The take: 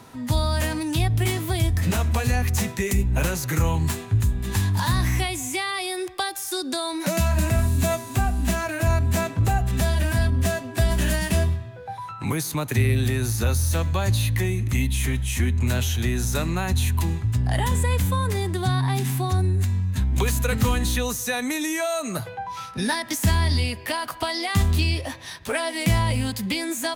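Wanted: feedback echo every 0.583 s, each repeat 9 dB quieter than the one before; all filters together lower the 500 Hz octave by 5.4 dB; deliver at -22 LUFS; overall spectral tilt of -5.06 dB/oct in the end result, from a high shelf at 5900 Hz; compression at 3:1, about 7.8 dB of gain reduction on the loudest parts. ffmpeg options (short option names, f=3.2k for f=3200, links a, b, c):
-af "equalizer=f=500:t=o:g=-8,highshelf=f=5.9k:g=-8,acompressor=threshold=-27dB:ratio=3,aecho=1:1:583|1166|1749|2332:0.355|0.124|0.0435|0.0152,volume=7.5dB"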